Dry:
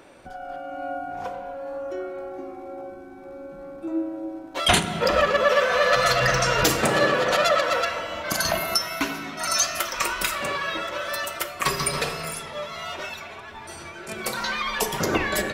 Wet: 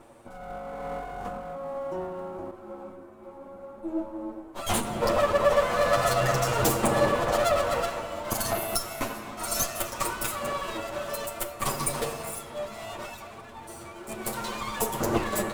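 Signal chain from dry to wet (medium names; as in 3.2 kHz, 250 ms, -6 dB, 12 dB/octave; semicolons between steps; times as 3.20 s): comb filter that takes the minimum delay 8.7 ms; high-order bell 3 kHz -8.5 dB 2.3 oct; 2.51–4.85 s: three-phase chorus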